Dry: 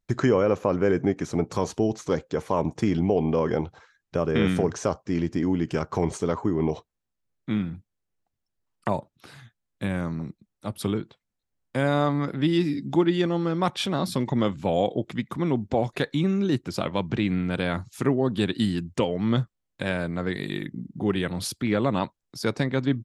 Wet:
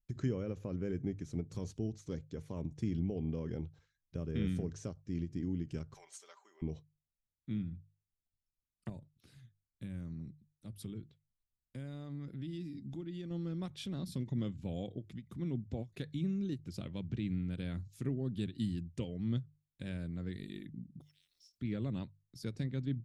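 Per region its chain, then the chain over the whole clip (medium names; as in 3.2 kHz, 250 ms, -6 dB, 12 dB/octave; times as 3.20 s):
5.94–6.62 s: high-pass 770 Hz 24 dB/octave + treble shelf 9.1 kHz +7.5 dB + comb 5.1 ms, depth 47%
8.89–13.31 s: treble shelf 9.2 kHz +2.5 dB + compression 2:1, threshold -30 dBFS
21.00–21.57 s: spectral peaks clipped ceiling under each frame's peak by 30 dB + band-pass filter 5.4 kHz, Q 20 + word length cut 12-bit, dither triangular
whole clip: amplifier tone stack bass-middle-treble 10-0-1; hum notches 50/100/150 Hz; endings held to a fixed fall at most 280 dB/s; trim +5 dB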